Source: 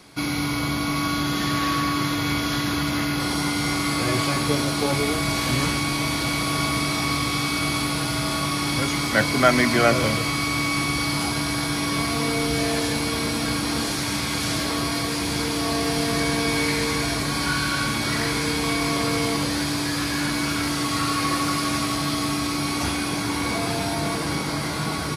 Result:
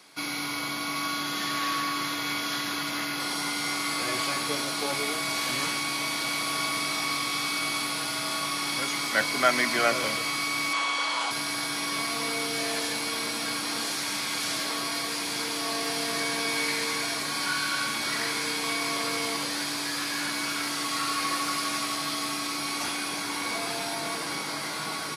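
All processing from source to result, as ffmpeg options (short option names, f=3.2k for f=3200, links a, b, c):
-filter_complex "[0:a]asettb=1/sr,asplit=3[a][b][c];[a]atrim=end=10.734[d];[b]atrim=start=10.73:end=11.31,asetpts=PTS-STARTPTS,afade=t=in:d=0.004:c=qsin,afade=t=out:st=0.576:d=0.004:c=qsin,highpass=350,equalizer=f=370:t=q:w=4:g=-5,equalizer=f=540:t=q:w=4:g=7,equalizer=f=990:t=q:w=4:g=9,equalizer=f=1.5k:t=q:w=4:g=3,equalizer=f=3.3k:t=q:w=4:g=6,equalizer=f=5.1k:t=q:w=4:g=-6,lowpass=f=8.4k:w=0.5412,lowpass=f=8.4k:w=1.3066,bandreject=f=3.6k:w=25[e];[c]atrim=start=11.306[f];[d][e]acrossfade=d=0.004:c1=hsin:c2=qsin[g];[g][f]acrossfade=d=0.004:c1=qsin:c2=hsin,highpass=170,lowshelf=f=470:g=-11.5,volume=-2.5dB"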